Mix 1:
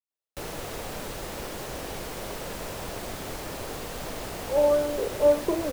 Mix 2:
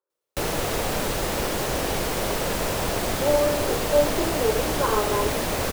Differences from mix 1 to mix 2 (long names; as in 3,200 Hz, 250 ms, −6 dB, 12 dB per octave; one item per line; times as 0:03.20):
speech: entry −1.30 s
background +10.0 dB